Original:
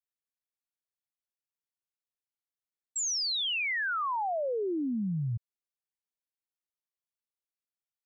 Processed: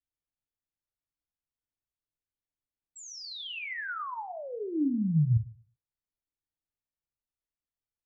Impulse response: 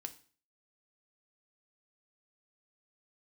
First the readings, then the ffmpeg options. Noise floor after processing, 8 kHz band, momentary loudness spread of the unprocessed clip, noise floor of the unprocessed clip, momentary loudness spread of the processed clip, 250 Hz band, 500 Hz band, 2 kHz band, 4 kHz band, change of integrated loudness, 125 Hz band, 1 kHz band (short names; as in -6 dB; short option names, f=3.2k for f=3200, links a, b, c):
under -85 dBFS, n/a, 7 LU, under -85 dBFS, 15 LU, +3.5 dB, -6.0 dB, -6.0 dB, -10.0 dB, -1.0 dB, +7.5 dB, -6.5 dB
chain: -filter_complex "[0:a]aemphasis=mode=reproduction:type=riaa,acrossover=split=390|1000[a][b][c];[b]acompressor=threshold=-43dB:ratio=6[d];[a][d][c]amix=inputs=3:normalize=0[e];[1:a]atrim=start_sample=2205[f];[e][f]afir=irnorm=-1:irlink=0"